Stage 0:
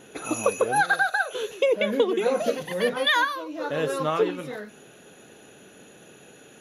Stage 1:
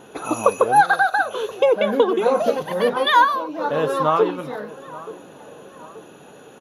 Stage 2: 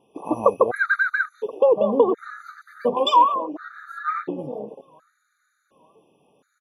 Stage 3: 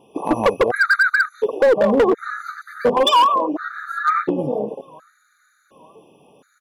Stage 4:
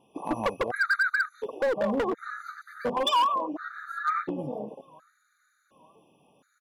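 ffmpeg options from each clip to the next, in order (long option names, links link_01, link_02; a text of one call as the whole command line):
ffmpeg -i in.wav -filter_complex "[0:a]equalizer=frequency=1000:width_type=o:width=1:gain=9,equalizer=frequency=2000:width_type=o:width=1:gain=-6,equalizer=frequency=8000:width_type=o:width=1:gain=-7,asplit=2[link_01][link_02];[link_02]adelay=879,lowpass=frequency=1900:poles=1,volume=-18dB,asplit=2[link_03][link_04];[link_04]adelay=879,lowpass=frequency=1900:poles=1,volume=0.53,asplit=2[link_05][link_06];[link_06]adelay=879,lowpass=frequency=1900:poles=1,volume=0.53,asplit=2[link_07][link_08];[link_08]adelay=879,lowpass=frequency=1900:poles=1,volume=0.53[link_09];[link_01][link_03][link_05][link_07][link_09]amix=inputs=5:normalize=0,volume=3.5dB" out.wav
ffmpeg -i in.wav -af "afwtdn=0.0562,afftfilt=real='re*gt(sin(2*PI*0.7*pts/sr)*(1-2*mod(floor(b*sr/1024/1200),2)),0)':imag='im*gt(sin(2*PI*0.7*pts/sr)*(1-2*mod(floor(b*sr/1024/1200),2)),0)':win_size=1024:overlap=0.75" out.wav
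ffmpeg -i in.wav -filter_complex "[0:a]asplit=2[link_01][link_02];[link_02]acompressor=threshold=-25dB:ratio=6,volume=2dB[link_03];[link_01][link_03]amix=inputs=2:normalize=0,volume=12.5dB,asoftclip=hard,volume=-12.5dB,volume=2.5dB" out.wav
ffmpeg -i in.wav -af "equalizer=frequency=430:width=2.2:gain=-6,volume=-9dB" out.wav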